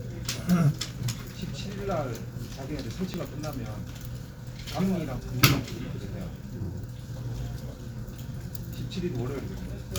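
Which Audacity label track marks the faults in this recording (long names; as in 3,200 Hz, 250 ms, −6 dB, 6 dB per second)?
3.140000	3.140000	click −18 dBFS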